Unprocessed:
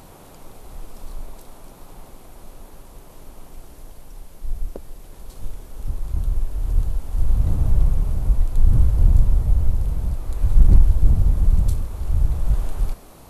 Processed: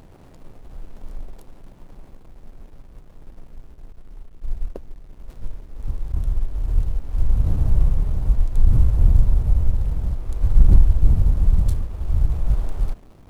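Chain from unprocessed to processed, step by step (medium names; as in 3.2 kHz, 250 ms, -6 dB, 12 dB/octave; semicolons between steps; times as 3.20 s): hysteresis with a dead band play -37 dBFS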